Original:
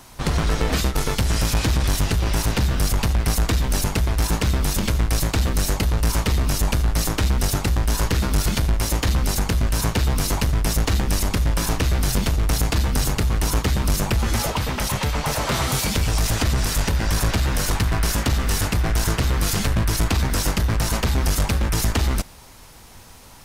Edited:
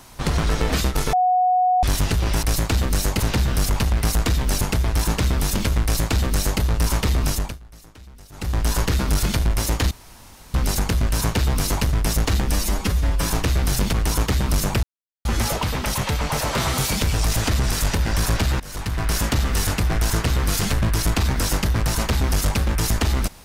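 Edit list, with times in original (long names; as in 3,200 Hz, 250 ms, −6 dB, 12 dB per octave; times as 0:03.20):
0:01.13–0:01.83: beep over 733 Hz −14.5 dBFS
0:05.07–0:05.84: duplicate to 0:02.43
0:06.53–0:07.83: duck −24 dB, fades 0.28 s
0:09.14: splice in room tone 0.63 s
0:11.11–0:11.59: time-stretch 1.5×
0:12.29–0:13.29: remove
0:14.19: splice in silence 0.42 s
0:17.54–0:18.10: fade in, from −21 dB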